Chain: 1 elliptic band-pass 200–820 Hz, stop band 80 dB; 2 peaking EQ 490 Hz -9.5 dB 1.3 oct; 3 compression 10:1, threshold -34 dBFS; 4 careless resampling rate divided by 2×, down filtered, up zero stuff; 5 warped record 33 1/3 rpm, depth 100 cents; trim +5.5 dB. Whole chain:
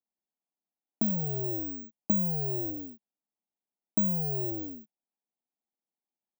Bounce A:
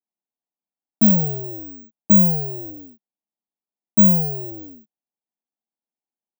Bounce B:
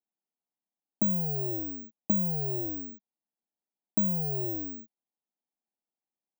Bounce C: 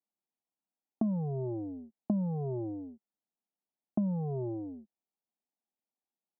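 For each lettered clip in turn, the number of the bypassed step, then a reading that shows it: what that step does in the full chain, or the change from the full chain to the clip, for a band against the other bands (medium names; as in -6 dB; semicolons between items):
3, mean gain reduction 5.0 dB; 5, momentary loudness spread change -1 LU; 4, crest factor change -3.5 dB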